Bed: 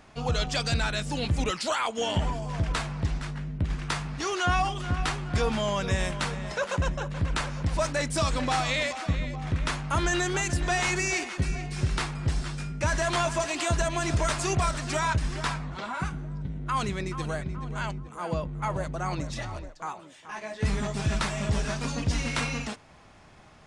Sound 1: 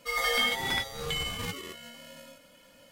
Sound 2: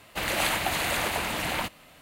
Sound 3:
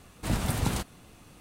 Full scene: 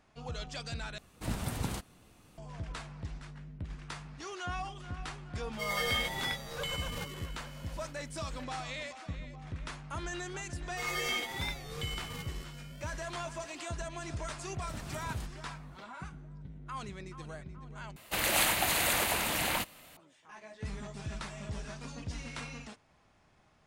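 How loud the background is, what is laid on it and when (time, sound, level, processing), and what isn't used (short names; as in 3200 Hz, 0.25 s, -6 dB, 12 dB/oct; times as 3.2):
bed -13 dB
0.98 replace with 3 -7 dB
5.53 add 1 -5.5 dB
10.71 add 1 -8 dB + record warp 45 rpm, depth 100 cents
14.44 add 3 -15 dB
17.96 replace with 2 -3.5 dB + high shelf 6200 Hz +9 dB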